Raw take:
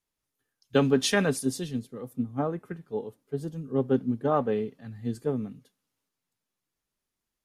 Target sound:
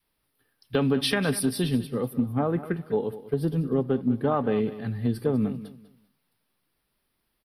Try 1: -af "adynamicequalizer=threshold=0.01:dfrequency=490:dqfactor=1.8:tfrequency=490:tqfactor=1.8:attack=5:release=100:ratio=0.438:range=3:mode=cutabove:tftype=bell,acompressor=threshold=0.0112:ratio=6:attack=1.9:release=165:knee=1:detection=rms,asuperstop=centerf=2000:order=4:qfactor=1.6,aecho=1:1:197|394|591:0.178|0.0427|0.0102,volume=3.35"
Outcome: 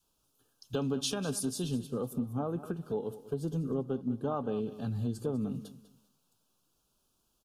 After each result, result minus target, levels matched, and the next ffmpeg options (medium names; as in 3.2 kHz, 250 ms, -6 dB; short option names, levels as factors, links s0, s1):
compression: peak gain reduction +9 dB; 2 kHz band -7.5 dB
-af "adynamicequalizer=threshold=0.01:dfrequency=490:dqfactor=1.8:tfrequency=490:tqfactor=1.8:attack=5:release=100:ratio=0.438:range=3:mode=cutabove:tftype=bell,acompressor=threshold=0.0376:ratio=6:attack=1.9:release=165:knee=1:detection=rms,asuperstop=centerf=2000:order=4:qfactor=1.6,aecho=1:1:197|394|591:0.178|0.0427|0.0102,volume=3.35"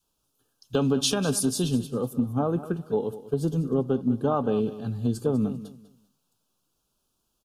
2 kHz band -7.5 dB
-af "adynamicequalizer=threshold=0.01:dfrequency=490:dqfactor=1.8:tfrequency=490:tqfactor=1.8:attack=5:release=100:ratio=0.438:range=3:mode=cutabove:tftype=bell,acompressor=threshold=0.0376:ratio=6:attack=1.9:release=165:knee=1:detection=rms,asuperstop=centerf=6900:order=4:qfactor=1.6,aecho=1:1:197|394|591:0.178|0.0427|0.0102,volume=3.35"